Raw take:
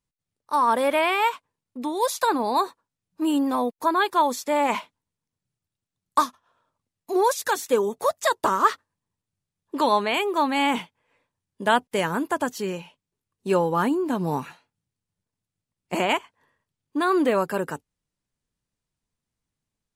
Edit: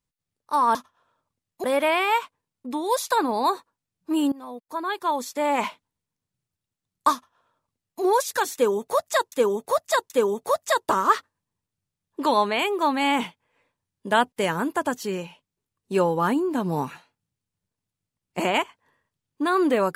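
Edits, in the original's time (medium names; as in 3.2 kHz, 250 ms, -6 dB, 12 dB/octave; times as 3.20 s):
3.43–4.79 s: fade in linear, from -20.5 dB
6.24–7.13 s: copy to 0.75 s
7.65–8.43 s: loop, 3 plays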